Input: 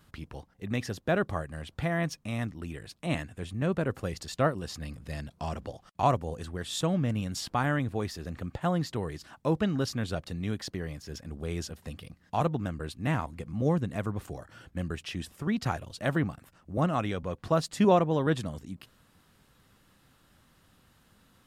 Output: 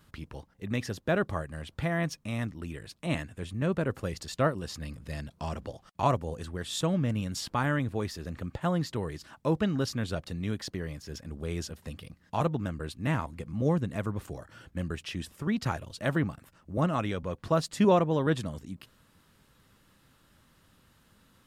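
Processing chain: band-stop 740 Hz, Q 12

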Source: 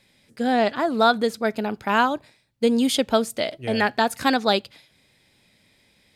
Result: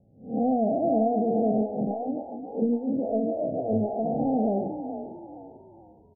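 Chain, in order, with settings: spectral blur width 207 ms; high-pass 68 Hz; hum notches 60/120/180/240 Hz; compression, threshold -27 dBFS, peak gain reduction 8 dB; dynamic bell 650 Hz, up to +6 dB, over -46 dBFS, Q 3.4; Chebyshev low-pass 810 Hz, order 8; tilt EQ -4 dB/octave; doubling 46 ms -14 dB; frequency-shifting echo 445 ms, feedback 36%, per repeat +39 Hz, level -10 dB; 1.61–4.06 s: lamp-driven phase shifter 3.6 Hz

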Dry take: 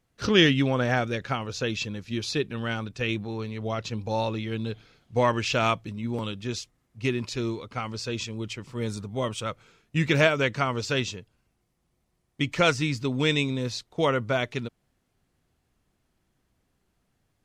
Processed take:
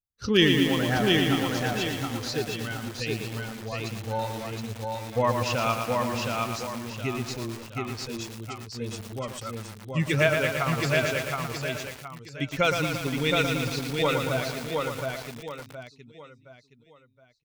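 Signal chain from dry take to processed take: expander on every frequency bin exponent 1.5; feedback delay 719 ms, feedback 36%, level -3 dB; bit-crushed delay 115 ms, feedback 80%, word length 6-bit, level -5 dB

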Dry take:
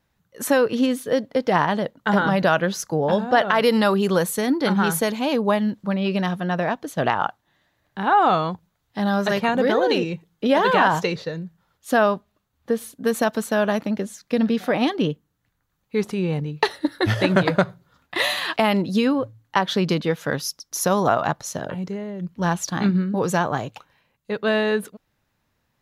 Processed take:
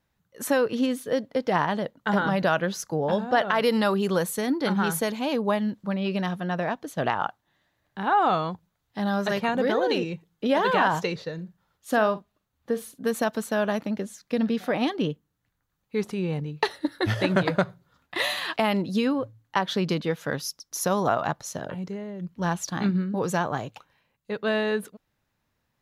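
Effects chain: 11.34–13.09 s: doubling 46 ms -13.5 dB; trim -4.5 dB

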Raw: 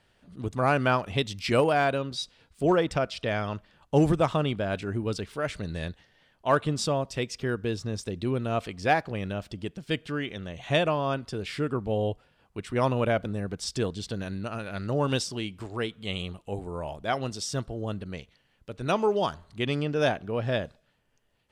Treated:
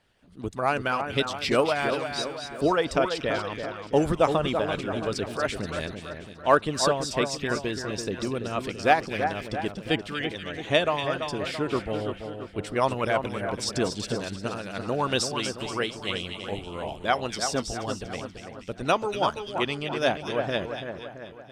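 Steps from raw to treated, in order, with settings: harmonic-percussive split harmonic -11 dB; in parallel at +1 dB: gain riding within 4 dB 2 s; on the sum: two-band feedback delay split 2 kHz, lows 335 ms, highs 239 ms, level -7 dB; trim -3 dB

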